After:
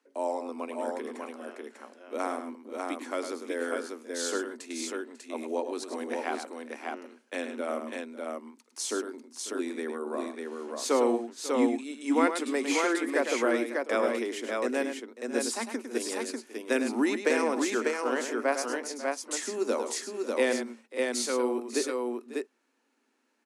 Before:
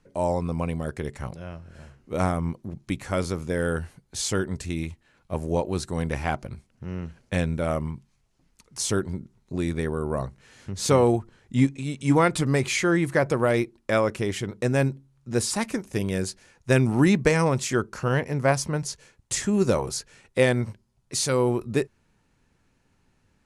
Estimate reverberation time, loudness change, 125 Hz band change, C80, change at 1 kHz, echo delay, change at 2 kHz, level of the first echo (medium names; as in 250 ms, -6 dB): no reverb, -5.5 dB, under -35 dB, no reverb, -3.0 dB, 104 ms, -3.0 dB, -8.5 dB